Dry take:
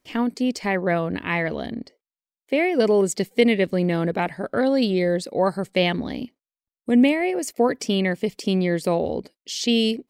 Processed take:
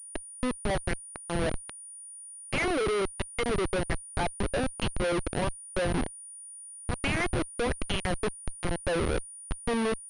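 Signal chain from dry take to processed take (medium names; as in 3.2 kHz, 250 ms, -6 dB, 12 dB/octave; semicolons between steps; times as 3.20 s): LFO band-pass sine 1.3 Hz 340–3100 Hz; Schmitt trigger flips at -31 dBFS; class-D stage that switches slowly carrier 9.5 kHz; trim +4 dB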